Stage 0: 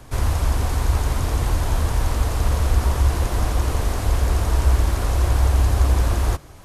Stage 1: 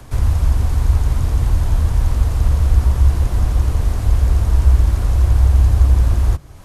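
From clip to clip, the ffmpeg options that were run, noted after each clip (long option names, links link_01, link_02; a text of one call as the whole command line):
ffmpeg -i in.wav -filter_complex "[0:a]acrossover=split=200[link_01][link_02];[link_02]acompressor=threshold=-56dB:ratio=1.5[link_03];[link_01][link_03]amix=inputs=2:normalize=0,volume=5.5dB" out.wav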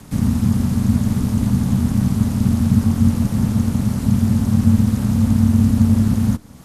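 ffmpeg -i in.wav -af "highshelf=frequency=4400:gain=7,aeval=exprs='val(0)*sin(2*PI*160*n/s)':channel_layout=same" out.wav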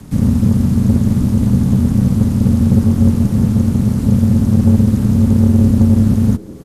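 ffmpeg -i in.wav -filter_complex "[0:a]acrossover=split=450[link_01][link_02];[link_01]acontrast=83[link_03];[link_03][link_02]amix=inputs=2:normalize=0,asplit=4[link_04][link_05][link_06][link_07];[link_05]adelay=195,afreqshift=100,volume=-24dB[link_08];[link_06]adelay=390,afreqshift=200,volume=-30.7dB[link_09];[link_07]adelay=585,afreqshift=300,volume=-37.5dB[link_10];[link_04][link_08][link_09][link_10]amix=inputs=4:normalize=0,volume=-1dB" out.wav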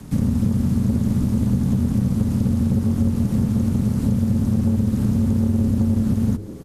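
ffmpeg -i in.wav -af "bandreject=frequency=50:width_type=h:width=6,bandreject=frequency=100:width_type=h:width=6,acompressor=threshold=-13dB:ratio=6,volume=-2dB" -ar 32000 -c:a libmp3lame -b:a 96k out.mp3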